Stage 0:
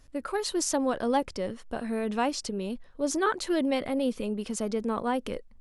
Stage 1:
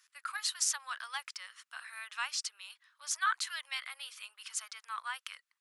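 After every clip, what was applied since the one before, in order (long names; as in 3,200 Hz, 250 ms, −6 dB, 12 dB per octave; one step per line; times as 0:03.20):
Butterworth high-pass 1,200 Hz 36 dB per octave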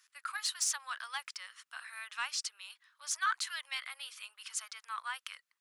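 soft clipping −21 dBFS, distortion −21 dB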